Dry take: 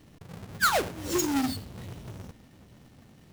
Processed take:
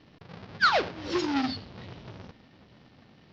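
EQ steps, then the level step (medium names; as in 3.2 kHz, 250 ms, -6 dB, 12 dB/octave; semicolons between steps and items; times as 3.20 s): steep low-pass 5.2 kHz 48 dB/octave; bass shelf 77 Hz -8.5 dB; bass shelf 460 Hz -4 dB; +2.5 dB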